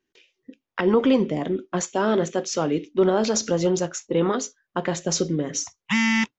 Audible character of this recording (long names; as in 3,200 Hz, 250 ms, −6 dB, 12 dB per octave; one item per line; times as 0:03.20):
background noise floor −86 dBFS
spectral slope −4.5 dB per octave